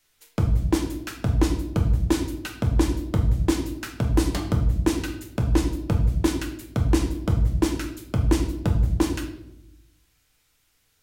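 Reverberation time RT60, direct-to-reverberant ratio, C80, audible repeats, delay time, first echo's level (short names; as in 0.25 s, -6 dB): 0.85 s, 2.5 dB, 11.0 dB, none, none, none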